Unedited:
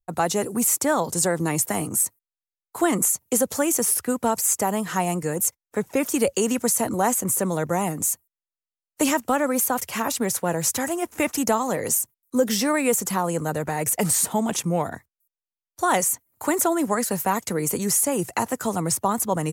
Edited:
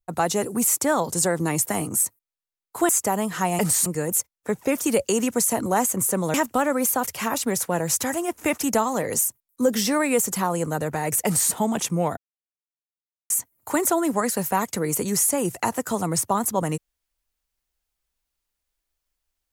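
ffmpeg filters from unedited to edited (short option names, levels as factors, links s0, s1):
-filter_complex "[0:a]asplit=7[s0][s1][s2][s3][s4][s5][s6];[s0]atrim=end=2.892[s7];[s1]atrim=start=4.438:end=5.142[s8];[s2]atrim=start=13.988:end=14.262[s9];[s3]atrim=start=5.138:end=7.622[s10];[s4]atrim=start=9.078:end=14.91,asetpts=PTS-STARTPTS,afade=t=out:st=5.828:d=0.004:c=hsin[s11];[s5]atrim=start=14.91:end=16.04,asetpts=PTS-STARTPTS,volume=0[s12];[s6]atrim=start=16.04,asetpts=PTS-STARTPTS,afade=t=in:d=0.004:c=hsin[s13];[s7][s8]acrossfade=d=0.004:c1=hsin:c2=hsin[s14];[s14][s9]acrossfade=d=0.004:c1=hsin:c2=hsin[s15];[s15][s10]acrossfade=d=0.004:c1=hsin:c2=hsin[s16];[s11][s12][s13]concat=n=3:v=0:a=1[s17];[s16][s17]acrossfade=d=0.004:c1=hsin:c2=hsin"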